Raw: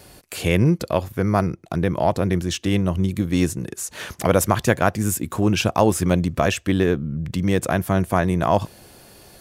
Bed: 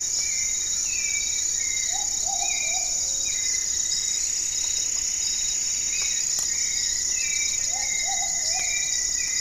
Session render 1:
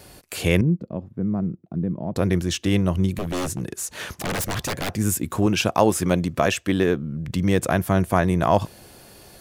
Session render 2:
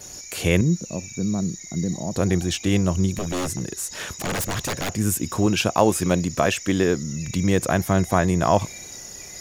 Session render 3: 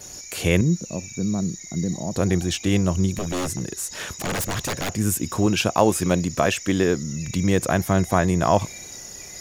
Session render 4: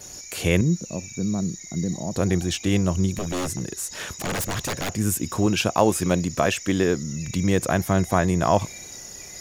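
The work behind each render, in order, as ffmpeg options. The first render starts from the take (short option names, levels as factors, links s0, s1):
-filter_complex "[0:a]asettb=1/sr,asplit=3[s0][s1][s2];[s0]atrim=end=0.614[s3];[s1]atrim=start=0.61:end=2.16,asetpts=PTS-STARTPTS,afade=t=in:d=0.004:c=qsin,afade=t=out:st=1.546:d=0.004:c=qsin,bandpass=f=200:t=q:w=1.8[s4];[s2]atrim=start=2.156[s5];[s3][s4]acrossfade=d=0.004:c1=hsin:c2=qsin[s6];[s6][s5]acrossfade=d=0.004:c1=qsin:c2=hsin,asettb=1/sr,asplit=3[s7][s8][s9];[s7]atrim=end=3.134[s10];[s8]atrim=start=3.13:end=4.9,asetpts=PTS-STARTPTS,afade=t=in:d=0.004:c=qsin,afade=t=out:st=1.766:d=0.004:c=qsin,aeval=exprs='0.0944*(abs(mod(val(0)/0.0944+3,4)-2)-1)':c=same[s11];[s9]atrim=start=4.896[s12];[s10][s11]acrossfade=d=0.004:c1=hsin:c2=qsin[s13];[s13][s12]acrossfade=d=0.004:c1=qsin:c2=hsin,asettb=1/sr,asplit=3[s14][s15][s16];[s14]atrim=end=5.464[s17];[s15]atrim=start=5.46:end=7.28,asetpts=PTS-STARTPTS,afade=t=in:d=0.004:c=qsin,afade=t=out:st=1.816:d=0.004:c=qsin,highpass=f=150:p=1[s18];[s16]atrim=start=7.276[s19];[s17][s18]acrossfade=d=0.004:c1=hsin:c2=qsin[s20];[s20][s19]acrossfade=d=0.004:c1=qsin:c2=hsin"
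-filter_complex "[1:a]volume=0.2[s0];[0:a][s0]amix=inputs=2:normalize=0"
-af anull
-af "volume=0.891"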